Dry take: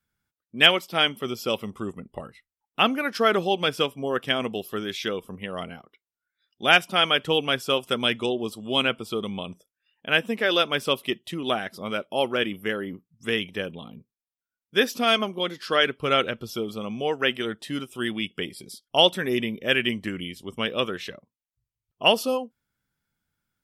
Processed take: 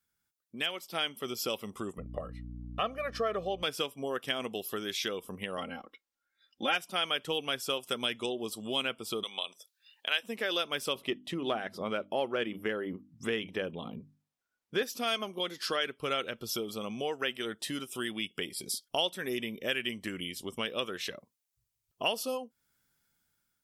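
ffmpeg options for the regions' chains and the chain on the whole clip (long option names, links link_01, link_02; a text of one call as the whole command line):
ffmpeg -i in.wav -filter_complex "[0:a]asettb=1/sr,asplit=3[link_01][link_02][link_03];[link_01]atrim=end=1.984[link_04];[link_02]atrim=start=1.98:end=3.63,asetpts=PTS-STARTPTS,afade=type=in:duration=0.004:curve=qsin,afade=type=out:start_time=1.646:duration=0.004:curve=qsin,lowpass=frequency=1200:poles=1,aecho=1:1:1.7:0.9,atrim=end_sample=72765,aeval=exprs='val(0)+0.0141*(sin(2*PI*60*n/s)+sin(2*PI*2*60*n/s)/2+sin(2*PI*3*60*n/s)/3+sin(2*PI*4*60*n/s)/4+sin(2*PI*5*60*n/s)/5)':channel_layout=same[link_05];[link_03]atrim=start=3.626[link_06];[link_04][link_05]acrossfade=duration=0.004:curve1=hsin:curve2=qsin[link_07];[link_07][link_06]acrossfade=duration=0.004:curve1=qsin:curve2=hsin,asettb=1/sr,asplit=3[link_08][link_09][link_10];[link_08]atrim=end=5.574[link_11];[link_09]atrim=start=5.57:end=6.75,asetpts=PTS-STARTPTS,afade=type=in:duration=0.004:curve=qsin,afade=type=out:start_time=1.176:duration=0.004:curve=qsin,lowpass=frequency=2600:poles=1,aecho=1:1:3.7:0.92,atrim=end_sample=52038[link_12];[link_10]atrim=start=6.746[link_13];[link_11][link_12]acrossfade=duration=0.004:curve1=hsin:curve2=qsin[link_14];[link_14][link_13]acrossfade=duration=0.004:curve1=qsin:curve2=hsin,asettb=1/sr,asplit=3[link_15][link_16][link_17];[link_15]atrim=end=9.234[link_18];[link_16]atrim=start=9.23:end=10.23,asetpts=PTS-STARTPTS,afade=type=in:duration=0.004:curve=qsin,afade=type=out:start_time=0.996:duration=0.004:curve=qsin,highpass=650,equalizer=frequency=4000:width_type=o:width=0.64:gain=12[link_19];[link_17]atrim=start=10.226[link_20];[link_18][link_19]acrossfade=duration=0.004:curve1=hsin:curve2=qsin[link_21];[link_21][link_20]acrossfade=duration=0.004:curve1=qsin:curve2=hsin,asettb=1/sr,asplit=3[link_22][link_23][link_24];[link_22]atrim=end=10.954[link_25];[link_23]atrim=start=10.95:end=14.83,asetpts=PTS-STARTPTS,afade=type=in:duration=0.004:curve=qsin,afade=type=out:start_time=3.876:duration=0.004:curve=qsin,lowpass=frequency=1500:poles=1,bandreject=frequency=50:width_type=h:width=6,bandreject=frequency=100:width_type=h:width=6,bandreject=frequency=150:width_type=h:width=6,bandreject=frequency=200:width_type=h:width=6,bandreject=frequency=250:width_type=h:width=6,bandreject=frequency=300:width_type=h:width=6,acontrast=70[link_26];[link_24]atrim=start=14.826[link_27];[link_25][link_26]acrossfade=duration=0.004:curve1=hsin:curve2=qsin[link_28];[link_28][link_27]acrossfade=duration=0.004:curve1=qsin:curve2=hsin,acompressor=threshold=-39dB:ratio=2.5,bass=frequency=250:gain=-5,treble=frequency=4000:gain=7,dynaudnorm=framelen=310:gausssize=5:maxgain=7dB,volume=-4dB" out.wav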